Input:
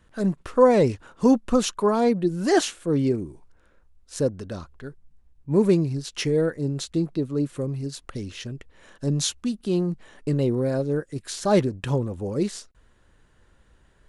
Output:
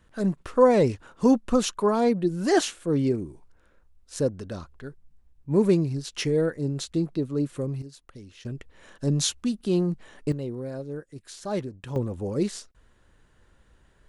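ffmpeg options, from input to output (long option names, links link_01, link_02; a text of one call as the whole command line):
ffmpeg -i in.wav -af "asetnsamples=nb_out_samples=441:pad=0,asendcmd='7.82 volume volume -12dB;8.45 volume volume 0dB;10.32 volume volume -10dB;11.96 volume volume -1dB',volume=-1.5dB" out.wav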